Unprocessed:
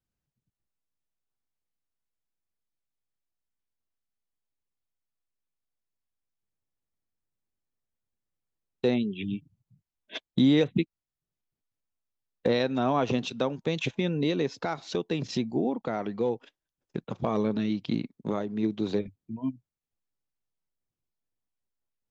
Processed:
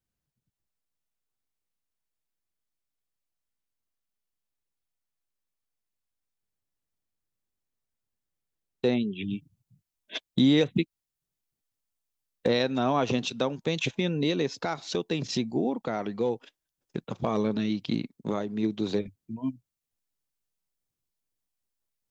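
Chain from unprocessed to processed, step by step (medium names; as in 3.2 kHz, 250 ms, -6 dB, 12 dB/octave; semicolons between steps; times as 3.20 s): treble shelf 4 kHz +2 dB, from 9.31 s +7.5 dB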